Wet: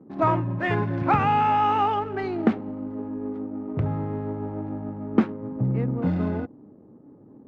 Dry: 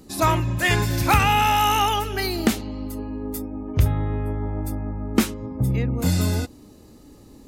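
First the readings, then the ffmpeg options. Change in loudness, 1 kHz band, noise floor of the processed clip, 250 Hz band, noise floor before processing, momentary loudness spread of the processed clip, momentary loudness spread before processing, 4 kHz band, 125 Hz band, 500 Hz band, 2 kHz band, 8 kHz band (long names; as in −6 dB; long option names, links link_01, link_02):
−3.0 dB, −1.0 dB, −50 dBFS, 0.0 dB, −48 dBFS, 12 LU, 13 LU, −16.5 dB, −4.5 dB, 0.0 dB, −8.0 dB, below −30 dB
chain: -af "highpass=frequency=120:width=0.5412,highpass=frequency=120:width=1.3066,adynamicsmooth=sensitivity=7.5:basefreq=510,lowpass=1300"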